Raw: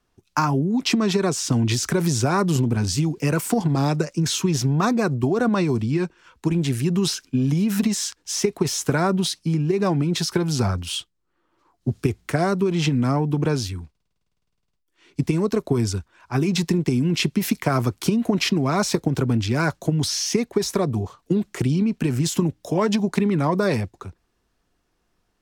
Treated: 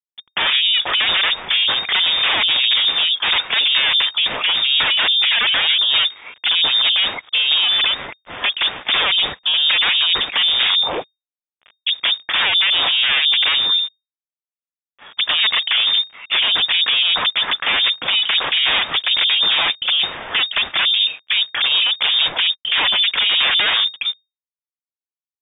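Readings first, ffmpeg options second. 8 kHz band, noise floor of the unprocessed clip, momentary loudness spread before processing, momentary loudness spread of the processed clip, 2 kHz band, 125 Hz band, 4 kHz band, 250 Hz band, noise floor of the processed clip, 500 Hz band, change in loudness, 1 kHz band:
below −40 dB, −72 dBFS, 5 LU, 6 LU, +14.0 dB, below −25 dB, +19.5 dB, −22.0 dB, below −85 dBFS, −10.0 dB, +7.5 dB, +2.0 dB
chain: -af "acrusher=bits=8:mix=0:aa=0.000001,aeval=exprs='0.531*sin(PI/2*8.91*val(0)/0.531)':channel_layout=same,lowpass=frequency=3100:width_type=q:width=0.5098,lowpass=frequency=3100:width_type=q:width=0.6013,lowpass=frequency=3100:width_type=q:width=0.9,lowpass=frequency=3100:width_type=q:width=2.563,afreqshift=-3700,volume=-7.5dB"

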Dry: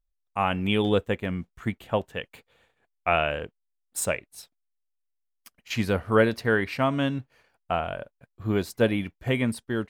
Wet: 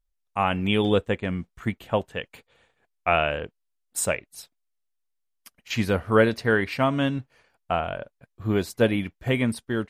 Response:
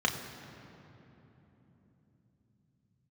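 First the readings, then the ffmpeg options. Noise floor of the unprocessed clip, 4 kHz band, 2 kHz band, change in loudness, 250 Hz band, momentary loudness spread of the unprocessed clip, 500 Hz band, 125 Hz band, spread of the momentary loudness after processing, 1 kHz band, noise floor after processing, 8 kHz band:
−78 dBFS, +1.5 dB, +1.5 dB, +1.5 dB, +1.5 dB, 13 LU, +1.5 dB, +1.5 dB, 13 LU, +1.5 dB, −77 dBFS, +2.5 dB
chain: -af "volume=2dB" -ar 44100 -c:a libmp3lame -b:a 56k

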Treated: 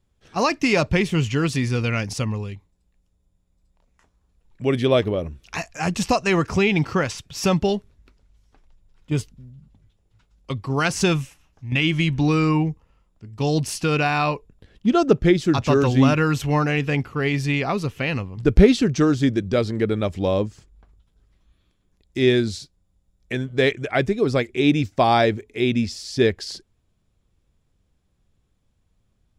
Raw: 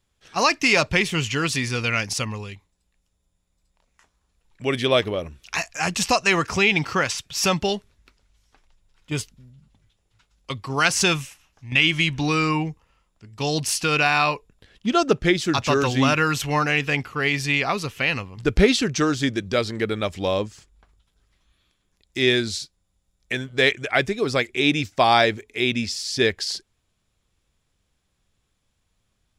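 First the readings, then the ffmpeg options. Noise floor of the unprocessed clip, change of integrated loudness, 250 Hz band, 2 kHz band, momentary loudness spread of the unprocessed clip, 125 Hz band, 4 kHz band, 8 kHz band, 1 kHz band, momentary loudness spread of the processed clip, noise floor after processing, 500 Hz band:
−72 dBFS, +0.5 dB, +4.5 dB, −4.5 dB, 12 LU, +5.5 dB, −5.5 dB, −6.0 dB, −1.5 dB, 11 LU, −68 dBFS, +2.5 dB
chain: -af "tiltshelf=frequency=740:gain=6"

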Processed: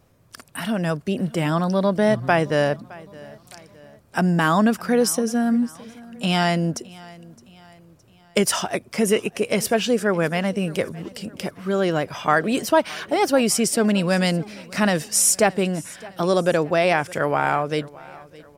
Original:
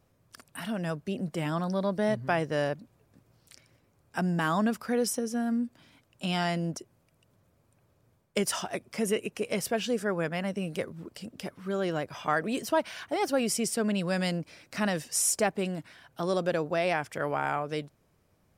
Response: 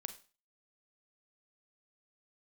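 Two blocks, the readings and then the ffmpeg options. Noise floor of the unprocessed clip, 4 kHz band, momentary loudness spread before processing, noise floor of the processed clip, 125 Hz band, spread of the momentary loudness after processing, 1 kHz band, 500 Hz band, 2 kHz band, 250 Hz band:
−69 dBFS, +9.0 dB, 10 LU, −53 dBFS, +9.0 dB, 13 LU, +9.0 dB, +9.0 dB, +9.0 dB, +9.0 dB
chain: -af "aecho=1:1:615|1230|1845:0.0841|0.0395|0.0186,volume=9dB"

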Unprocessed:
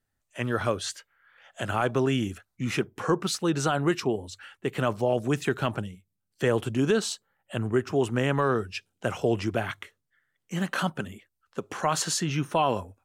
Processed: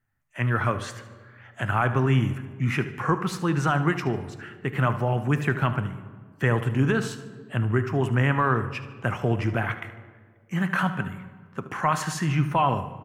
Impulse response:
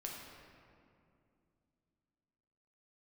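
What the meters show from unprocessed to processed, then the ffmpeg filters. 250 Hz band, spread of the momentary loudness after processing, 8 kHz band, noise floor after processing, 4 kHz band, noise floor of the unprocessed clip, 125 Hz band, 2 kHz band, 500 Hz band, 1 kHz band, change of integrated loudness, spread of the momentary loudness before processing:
+1.5 dB, 12 LU, −7.0 dB, −54 dBFS, −4.5 dB, −80 dBFS, +7.5 dB, +4.5 dB, −2.5 dB, +4.0 dB, +2.5 dB, 12 LU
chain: -filter_complex "[0:a]equalizer=frequency=125:width_type=o:width=1:gain=9,equalizer=frequency=500:width_type=o:width=1:gain=-5,equalizer=frequency=1000:width_type=o:width=1:gain=5,equalizer=frequency=2000:width_type=o:width=1:gain=7,equalizer=frequency=4000:width_type=o:width=1:gain=-8,equalizer=frequency=8000:width_type=o:width=1:gain=-6,aecho=1:1:75|150|225:0.178|0.0605|0.0206,asplit=2[link_01][link_02];[1:a]atrim=start_sample=2205,asetrate=74970,aresample=44100[link_03];[link_02][link_03]afir=irnorm=-1:irlink=0,volume=-2.5dB[link_04];[link_01][link_04]amix=inputs=2:normalize=0,volume=-2.5dB"

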